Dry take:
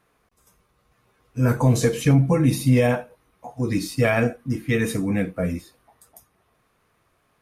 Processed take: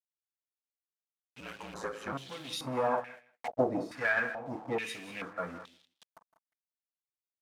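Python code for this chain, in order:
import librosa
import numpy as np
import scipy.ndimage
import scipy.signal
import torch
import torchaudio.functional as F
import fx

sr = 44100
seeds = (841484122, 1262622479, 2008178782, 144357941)

p1 = fx.delta_hold(x, sr, step_db=-37.5)
p2 = 10.0 ** (-24.0 / 20.0) * (np.abs((p1 / 10.0 ** (-24.0 / 20.0) + 3.0) % 4.0 - 2.0) - 1.0)
p3 = p1 + (p2 * 10.0 ** (-8.5 / 20.0))
p4 = fx.ring_mod(p3, sr, carrier_hz=54.0, at=(1.4, 2.13))
p5 = fx.transient(p4, sr, attack_db=12, sustain_db=-11, at=(2.97, 3.64))
p6 = p5 + 10.0 ** (-17.0 / 20.0) * np.pad(p5, (int(161 * sr / 1000.0), 0))[:len(p5)]
p7 = np.clip(10.0 ** (14.0 / 20.0) * p6, -1.0, 1.0) / 10.0 ** (14.0 / 20.0)
p8 = fx.peak_eq(p7, sr, hz=2300.0, db=-7.0, octaves=1.7)
p9 = p8 + 10.0 ** (-14.5 / 20.0) * np.pad(p8, (int(193 * sr / 1000.0), 0))[:len(p8)]
p10 = fx.filter_held_bandpass(p9, sr, hz=2.3, low_hz=640.0, high_hz=3400.0)
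y = p10 * 10.0 ** (6.5 / 20.0)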